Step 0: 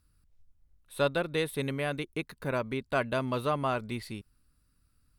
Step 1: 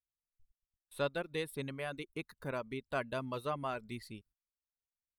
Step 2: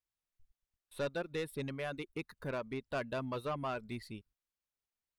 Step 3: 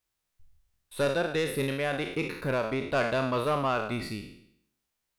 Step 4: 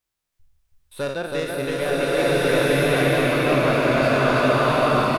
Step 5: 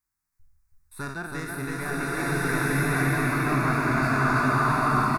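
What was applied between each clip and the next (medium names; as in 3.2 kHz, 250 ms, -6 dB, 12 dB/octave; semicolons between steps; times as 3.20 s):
reverb removal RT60 0.82 s; gate -57 dBFS, range -30 dB; trim -7 dB
treble shelf 5.8 kHz -6.5 dB; saturation -32 dBFS, distortion -13 dB; trim +2.5 dB
spectral sustain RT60 0.71 s; trim +8.5 dB
delay 324 ms -3 dB; swelling reverb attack 1330 ms, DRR -8.5 dB
static phaser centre 1.3 kHz, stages 4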